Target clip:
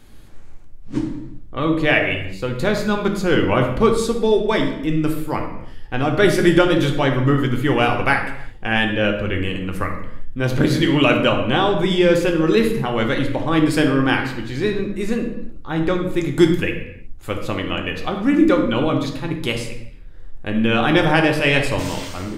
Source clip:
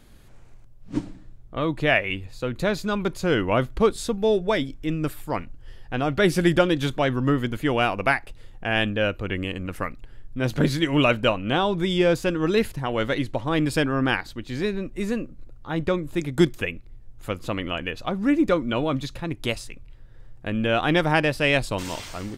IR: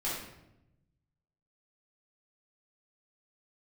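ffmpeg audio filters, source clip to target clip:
-filter_complex "[0:a]bandreject=frequency=680:width=12,asplit=2[link_01][link_02];[1:a]atrim=start_sample=2205,afade=type=out:start_time=0.4:duration=0.01,atrim=end_sample=18081,asetrate=41454,aresample=44100[link_03];[link_02][link_03]afir=irnorm=-1:irlink=0,volume=-6dB[link_04];[link_01][link_04]amix=inputs=2:normalize=0,volume=1dB"

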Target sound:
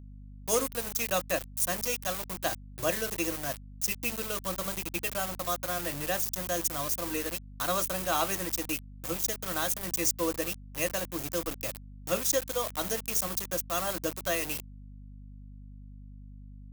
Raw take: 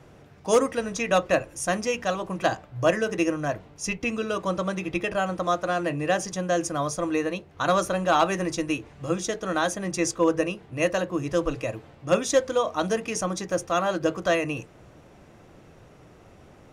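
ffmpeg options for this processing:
ffmpeg -i in.wav -af "aeval=exprs='val(0)*gte(abs(val(0)),0.0355)':channel_layout=same,aeval=exprs='val(0)+0.0158*(sin(2*PI*50*n/s)+sin(2*PI*2*50*n/s)/2+sin(2*PI*3*50*n/s)/3+sin(2*PI*4*50*n/s)/4+sin(2*PI*5*50*n/s)/5)':channel_layout=same,aemphasis=mode=production:type=75fm,volume=-8.5dB" out.wav

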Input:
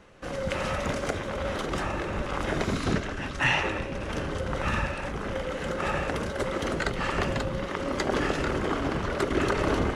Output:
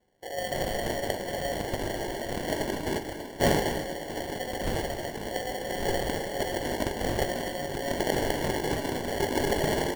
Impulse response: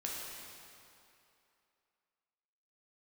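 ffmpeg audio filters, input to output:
-filter_complex "[0:a]highpass=360,afwtdn=0.0251,acrusher=samples=35:mix=1:aa=0.000001,asplit=2[link_01][link_02];[link_02]adelay=20,volume=-11dB[link_03];[link_01][link_03]amix=inputs=2:normalize=0,aecho=1:1:245:0.237,asplit=2[link_04][link_05];[1:a]atrim=start_sample=2205[link_06];[link_05][link_06]afir=irnorm=-1:irlink=0,volume=-11dB[link_07];[link_04][link_07]amix=inputs=2:normalize=0"

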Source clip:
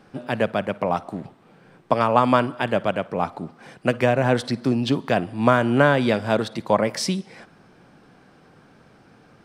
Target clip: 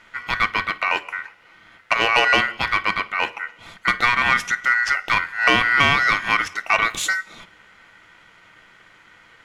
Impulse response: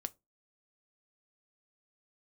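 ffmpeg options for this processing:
-filter_complex "[0:a]aeval=exprs='val(0)*sin(2*PI*1700*n/s)':channel_layout=same,acontrast=71[link_01];[1:a]atrim=start_sample=2205[link_02];[link_01][link_02]afir=irnorm=-1:irlink=0"

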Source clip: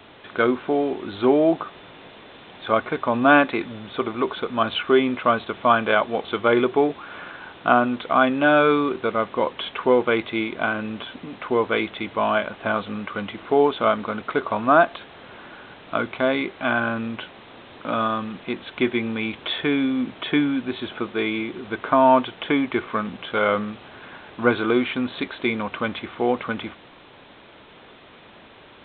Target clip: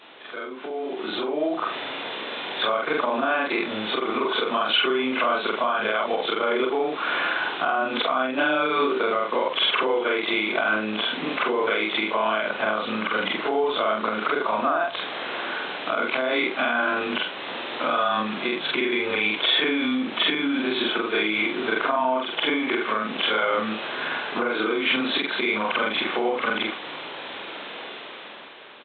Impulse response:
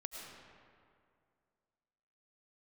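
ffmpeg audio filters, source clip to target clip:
-filter_complex "[0:a]afftfilt=real='re':imag='-im':win_size=4096:overlap=0.75,acompressor=threshold=-27dB:ratio=12,alimiter=level_in=5dB:limit=-24dB:level=0:latency=1:release=273,volume=-5dB,dynaudnorm=framelen=270:gausssize=9:maxgain=12dB,crystalizer=i=3:c=0,highpass=310,lowpass=3800,asplit=2[link_01][link_02];[link_02]asplit=2[link_03][link_04];[link_03]adelay=393,afreqshift=-56,volume=-23dB[link_05];[link_04]adelay=786,afreqshift=-112,volume=-32.9dB[link_06];[link_05][link_06]amix=inputs=2:normalize=0[link_07];[link_01][link_07]amix=inputs=2:normalize=0,volume=3.5dB"

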